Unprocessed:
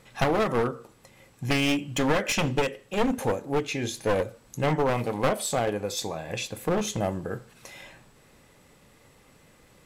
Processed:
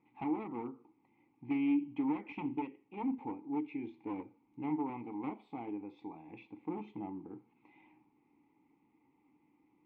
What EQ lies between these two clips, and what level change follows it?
vowel filter u; air absorption 490 m; 0.0 dB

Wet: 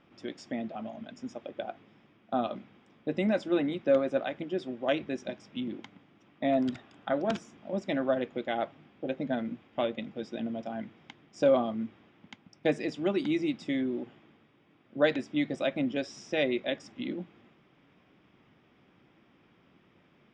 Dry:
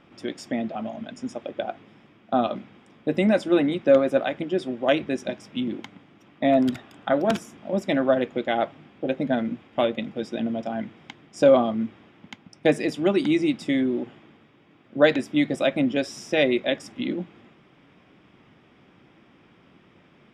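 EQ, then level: LPF 7100 Hz 24 dB/oct; -7.5 dB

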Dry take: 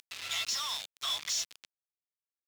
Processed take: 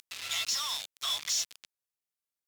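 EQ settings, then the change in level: bell 13000 Hz +4.5 dB 1.8 oct; 0.0 dB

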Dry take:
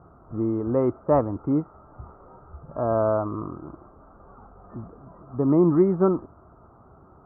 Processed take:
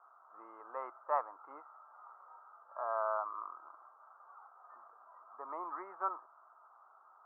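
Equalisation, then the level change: HPF 1000 Hz 24 dB/oct; LPF 1600 Hz 6 dB/oct; air absorption 410 m; +2.5 dB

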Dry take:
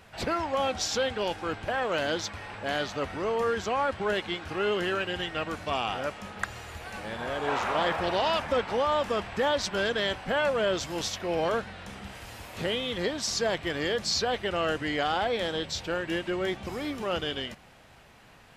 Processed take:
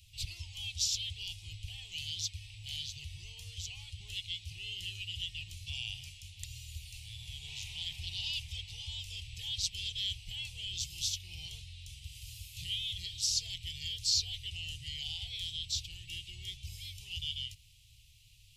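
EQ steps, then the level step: elliptic band-stop 110–2800 Hz, stop band 40 dB; bell 310 Hz +13 dB 0.44 oct; fixed phaser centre 660 Hz, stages 4; +1.5 dB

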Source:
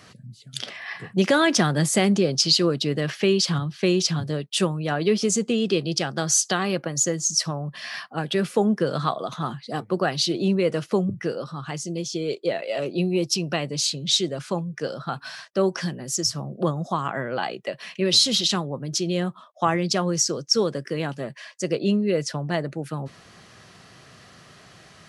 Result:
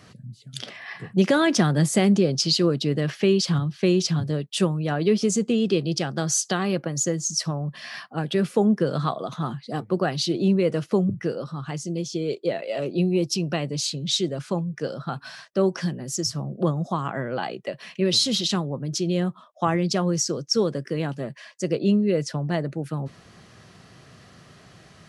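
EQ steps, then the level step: low shelf 470 Hz +6.5 dB; -3.5 dB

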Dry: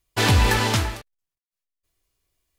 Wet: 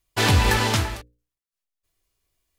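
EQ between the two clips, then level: notches 60/120/180/240/300/360/420/480/540 Hz; 0.0 dB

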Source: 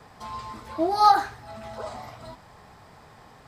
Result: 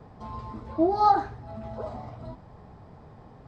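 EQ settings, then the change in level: tape spacing loss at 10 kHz 29 dB; bell 1900 Hz -11 dB 2.8 oct; +6.5 dB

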